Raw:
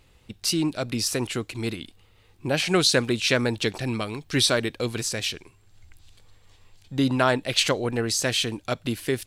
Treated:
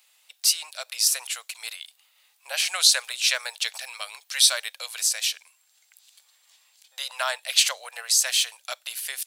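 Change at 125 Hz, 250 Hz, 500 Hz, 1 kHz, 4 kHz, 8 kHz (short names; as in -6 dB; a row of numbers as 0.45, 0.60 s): under -40 dB, under -40 dB, -15.0 dB, -5.5 dB, +3.0 dB, +7.0 dB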